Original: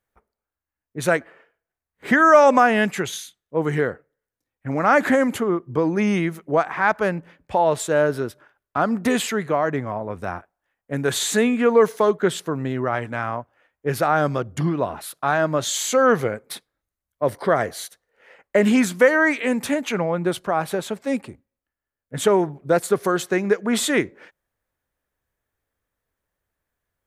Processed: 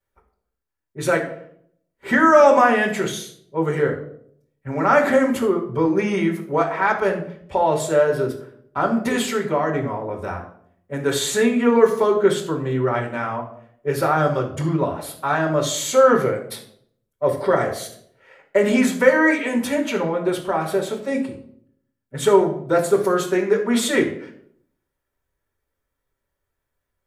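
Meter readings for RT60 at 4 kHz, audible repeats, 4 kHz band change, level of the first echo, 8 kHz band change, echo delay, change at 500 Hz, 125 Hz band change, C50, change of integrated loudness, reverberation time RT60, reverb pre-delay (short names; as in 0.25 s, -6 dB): 0.45 s, none, 0.0 dB, none, -0.5 dB, none, +2.0 dB, +0.5 dB, 9.0 dB, +1.0 dB, 0.65 s, 5 ms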